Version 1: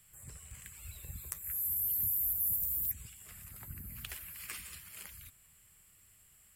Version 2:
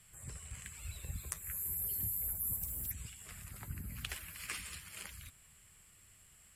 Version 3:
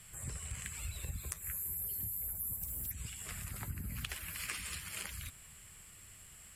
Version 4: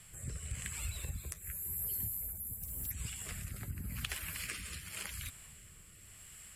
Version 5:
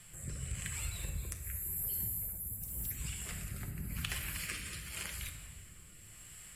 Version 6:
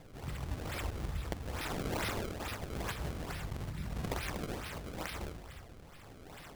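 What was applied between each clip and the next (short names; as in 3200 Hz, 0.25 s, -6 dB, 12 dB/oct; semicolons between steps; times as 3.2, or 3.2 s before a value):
Bessel low-pass 9400 Hz, order 4; gain +3.5 dB
compressor 4:1, threshold -45 dBFS, peak gain reduction 10 dB; gain +7 dB
rotary speaker horn 0.9 Hz; gain +3 dB
shoebox room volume 650 m³, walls mixed, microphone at 0.86 m
decimation with a swept rate 28×, swing 160% 2.3 Hz; gain +1.5 dB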